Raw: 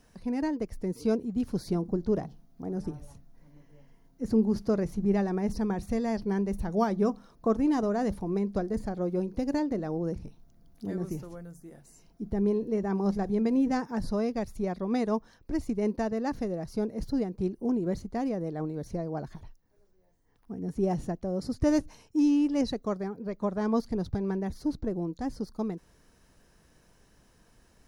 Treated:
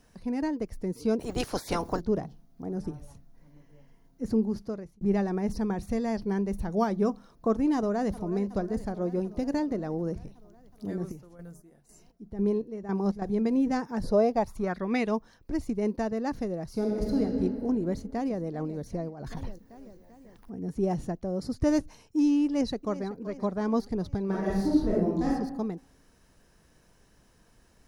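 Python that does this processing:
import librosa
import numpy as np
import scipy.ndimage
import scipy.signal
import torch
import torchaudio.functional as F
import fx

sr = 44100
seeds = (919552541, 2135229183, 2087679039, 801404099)

y = fx.spec_clip(x, sr, under_db=28, at=(1.19, 1.99), fade=0.02)
y = fx.echo_throw(y, sr, start_s=7.76, length_s=0.56, ms=370, feedback_pct=75, wet_db=-15.0)
y = fx.chopper(y, sr, hz=2.0, depth_pct=65, duty_pct=45, at=(10.89, 13.22))
y = fx.peak_eq(y, sr, hz=fx.line((14.02, 420.0), (15.1, 2900.0)), db=14.0, octaves=0.77, at=(14.02, 15.1), fade=0.02)
y = fx.reverb_throw(y, sr, start_s=16.71, length_s=0.5, rt60_s=2.6, drr_db=-2.0)
y = fx.echo_throw(y, sr, start_s=17.9, length_s=0.51, ms=390, feedback_pct=60, wet_db=-17.0)
y = fx.over_compress(y, sr, threshold_db=-43.0, ratio=-1.0, at=(19.08, 20.53), fade=0.02)
y = fx.echo_throw(y, sr, start_s=22.45, length_s=0.68, ms=380, feedback_pct=55, wet_db=-15.0)
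y = fx.reverb_throw(y, sr, start_s=24.25, length_s=1.04, rt60_s=0.82, drr_db=-6.5)
y = fx.edit(y, sr, fx.fade_out_span(start_s=4.26, length_s=0.75), tone=tone)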